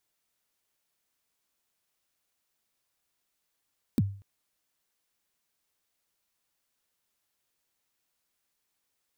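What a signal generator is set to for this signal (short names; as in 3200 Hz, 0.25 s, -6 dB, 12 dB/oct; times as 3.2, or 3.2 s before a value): kick drum length 0.24 s, from 300 Hz, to 99 Hz, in 35 ms, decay 0.43 s, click on, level -17.5 dB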